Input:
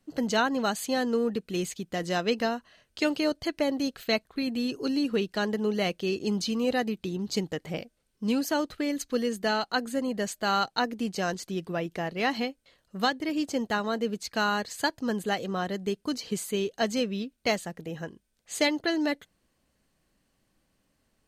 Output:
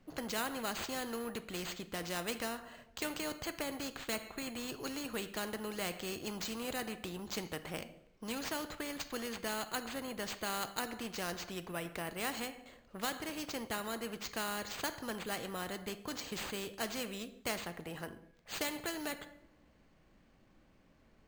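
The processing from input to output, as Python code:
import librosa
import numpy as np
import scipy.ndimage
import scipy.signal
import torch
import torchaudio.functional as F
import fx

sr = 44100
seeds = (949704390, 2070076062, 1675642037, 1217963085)

y = fx.sample_hold(x, sr, seeds[0], rate_hz=11000.0, jitter_pct=0)
y = fx.high_shelf(y, sr, hz=3000.0, db=-12.0)
y = fx.rev_double_slope(y, sr, seeds[1], early_s=0.55, late_s=1.7, knee_db=-28, drr_db=13.0)
y = fx.spectral_comp(y, sr, ratio=2.0)
y = F.gain(torch.from_numpy(y), -5.0).numpy()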